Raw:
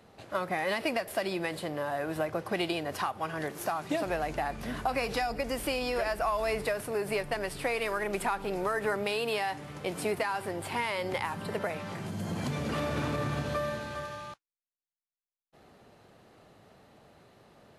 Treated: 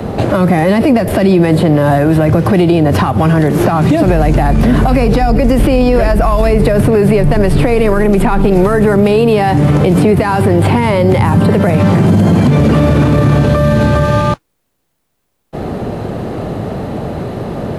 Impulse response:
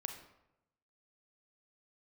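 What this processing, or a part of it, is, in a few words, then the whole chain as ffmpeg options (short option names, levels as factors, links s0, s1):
mastering chain: -filter_complex "[0:a]equalizer=f=5600:t=o:w=0.77:g=-2,acrossover=split=250|1600|4500[s0][s1][s2][s3];[s0]acompressor=threshold=0.00794:ratio=4[s4];[s1]acompressor=threshold=0.00708:ratio=4[s5];[s2]acompressor=threshold=0.00398:ratio=4[s6];[s3]acompressor=threshold=0.00158:ratio=4[s7];[s4][s5][s6][s7]amix=inputs=4:normalize=0,acompressor=threshold=0.00708:ratio=2,asoftclip=type=tanh:threshold=0.0251,tiltshelf=f=810:g=8,alimiter=level_in=53.1:limit=0.891:release=50:level=0:latency=1,volume=0.891"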